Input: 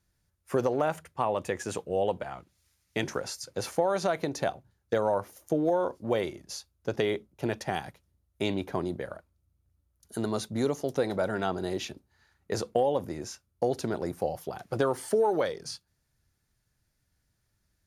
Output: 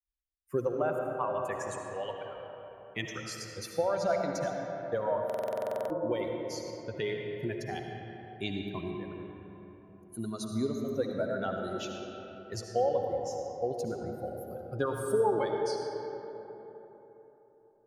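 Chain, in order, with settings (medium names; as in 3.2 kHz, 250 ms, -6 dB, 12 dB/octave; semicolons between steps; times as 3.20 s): expander on every frequency bin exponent 2; 1.87–2.36 s: frequency weighting ITU-R 468; reverberation RT60 3.8 s, pre-delay 35 ms, DRR 1.5 dB; buffer glitch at 5.25 s, samples 2048, times 13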